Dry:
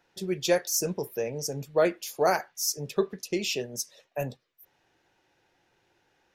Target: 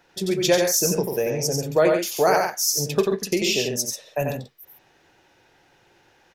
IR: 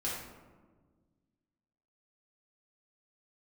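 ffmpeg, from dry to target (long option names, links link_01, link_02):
-filter_complex "[0:a]asplit=2[link_01][link_02];[link_02]acompressor=threshold=-32dB:ratio=6,volume=1.5dB[link_03];[link_01][link_03]amix=inputs=2:normalize=0,aecho=1:1:90.38|137:0.631|0.398,volume=2dB"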